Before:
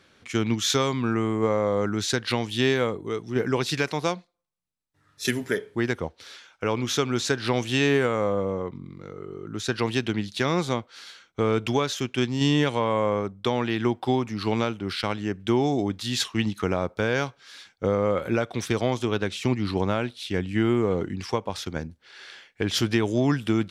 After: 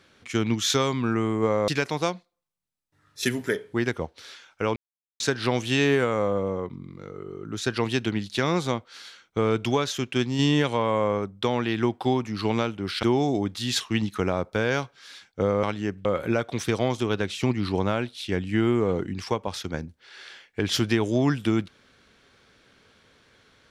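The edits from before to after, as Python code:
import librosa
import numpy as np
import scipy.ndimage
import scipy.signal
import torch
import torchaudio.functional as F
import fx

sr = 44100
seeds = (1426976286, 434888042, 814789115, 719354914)

y = fx.edit(x, sr, fx.cut(start_s=1.68, length_s=2.02),
    fx.silence(start_s=6.78, length_s=0.44),
    fx.move(start_s=15.05, length_s=0.42, to_s=18.07), tone=tone)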